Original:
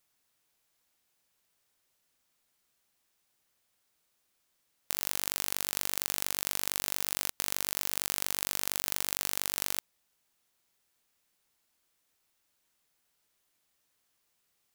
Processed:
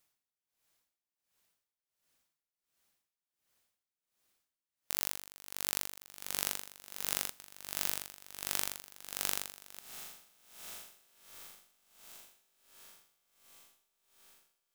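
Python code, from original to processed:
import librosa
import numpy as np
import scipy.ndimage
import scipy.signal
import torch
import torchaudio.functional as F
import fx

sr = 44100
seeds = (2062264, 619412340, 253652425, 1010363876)

y = fx.echo_diffused(x, sr, ms=1388, feedback_pct=50, wet_db=-13.0)
y = y * 10.0 ** (-22 * (0.5 - 0.5 * np.cos(2.0 * np.pi * 1.4 * np.arange(len(y)) / sr)) / 20.0)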